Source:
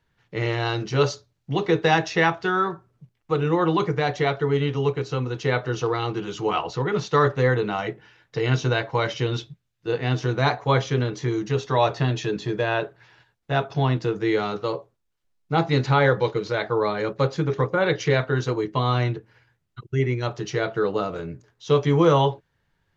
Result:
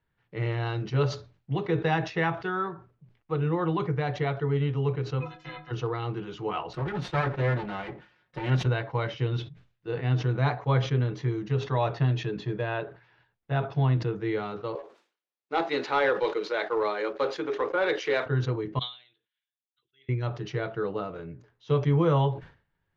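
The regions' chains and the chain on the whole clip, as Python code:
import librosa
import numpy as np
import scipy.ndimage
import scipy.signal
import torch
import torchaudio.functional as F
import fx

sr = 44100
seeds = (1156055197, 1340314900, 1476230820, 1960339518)

y = fx.spec_clip(x, sr, under_db=27, at=(5.2, 5.7), fade=0.02)
y = fx.peak_eq(y, sr, hz=150.0, db=12.5, octaves=0.25, at=(5.2, 5.7), fade=0.02)
y = fx.stiff_resonator(y, sr, f0_hz=150.0, decay_s=0.25, stiffness=0.03, at=(5.2, 5.7), fade=0.02)
y = fx.chain(y, sr, fx.lower_of_two(delay_ms=5.5),
    fx.highpass(hz=40.0, slope=12), at=(6.73, 8.66))
y = fx.chain(y, sr, fx.highpass(hz=310.0, slope=24),
    fx.leveller(passes=1),
    fx.high_shelf(hz=3500.0, db=7.5), at=(14.75, 18.26))
y = fx.chain(y, sr, fx.bandpass_q(hz=3500.0, q=13.0),
    fx.doubler(ms=15.0, db=-10.5), at=(18.79, 20.09))
y = scipy.signal.sosfilt(scipy.signal.butter(2, 3100.0, 'lowpass', fs=sr, output='sos'), y)
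y = fx.dynamic_eq(y, sr, hz=130.0, q=1.6, threshold_db=-36.0, ratio=4.0, max_db=7)
y = fx.sustainer(y, sr, db_per_s=140.0)
y = y * 10.0 ** (-7.5 / 20.0)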